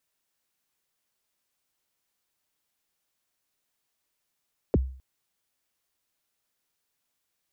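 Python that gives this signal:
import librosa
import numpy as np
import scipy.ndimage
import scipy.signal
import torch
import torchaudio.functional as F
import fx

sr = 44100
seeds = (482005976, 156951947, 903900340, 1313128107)

y = fx.drum_kick(sr, seeds[0], length_s=0.26, level_db=-15.5, start_hz=570.0, end_hz=65.0, sweep_ms=30.0, decay_s=0.47, click=False)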